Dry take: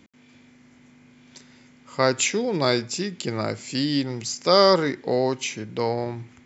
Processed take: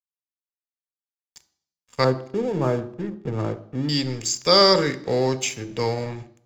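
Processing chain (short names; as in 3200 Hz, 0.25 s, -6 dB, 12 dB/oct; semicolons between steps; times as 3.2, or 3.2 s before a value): 2.04–3.89 LPF 1200 Hz 24 dB/oct; crossover distortion -40 dBFS; reverb RT60 0.60 s, pre-delay 3 ms, DRR 11.5 dB; gain -2.5 dB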